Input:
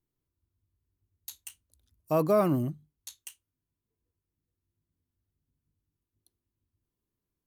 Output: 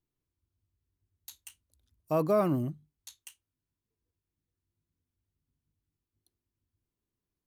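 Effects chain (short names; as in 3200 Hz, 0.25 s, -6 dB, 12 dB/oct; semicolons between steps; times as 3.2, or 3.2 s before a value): high shelf 6700 Hz -4.5 dB; gain -2 dB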